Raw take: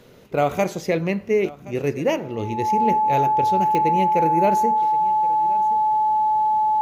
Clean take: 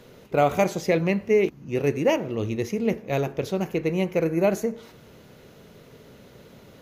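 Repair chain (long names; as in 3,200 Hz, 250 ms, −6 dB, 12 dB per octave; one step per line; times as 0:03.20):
click removal
notch filter 860 Hz, Q 30
echo removal 1,073 ms −20 dB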